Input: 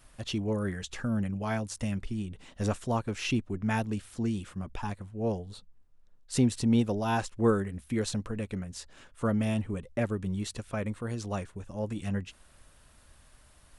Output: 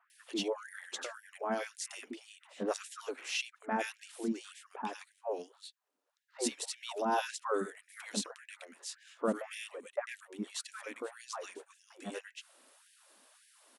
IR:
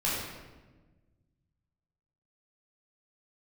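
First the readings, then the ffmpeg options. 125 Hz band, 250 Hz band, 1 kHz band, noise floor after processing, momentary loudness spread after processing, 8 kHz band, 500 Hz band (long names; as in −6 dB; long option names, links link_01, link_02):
below −20 dB, −12.0 dB, −1.5 dB, −76 dBFS, 14 LU, 0.0 dB, −4.5 dB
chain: -filter_complex "[0:a]acrossover=split=1700[link_01][link_02];[link_02]adelay=100[link_03];[link_01][link_03]amix=inputs=2:normalize=0,afftfilt=real='re*gte(b*sr/1024,210*pow(1600/210,0.5+0.5*sin(2*PI*1.8*pts/sr)))':imag='im*gte(b*sr/1024,210*pow(1600/210,0.5+0.5*sin(2*PI*1.8*pts/sr)))':win_size=1024:overlap=0.75"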